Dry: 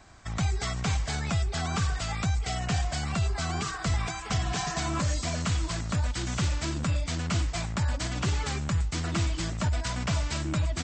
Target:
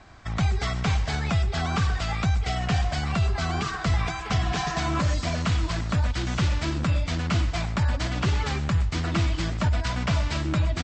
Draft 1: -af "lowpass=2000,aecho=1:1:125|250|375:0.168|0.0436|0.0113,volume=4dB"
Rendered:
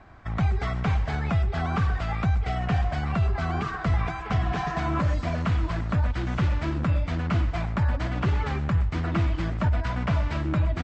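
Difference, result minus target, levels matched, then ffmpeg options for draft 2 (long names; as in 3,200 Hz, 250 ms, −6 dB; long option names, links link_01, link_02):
4,000 Hz band −9.0 dB
-af "lowpass=4600,aecho=1:1:125|250|375:0.168|0.0436|0.0113,volume=4dB"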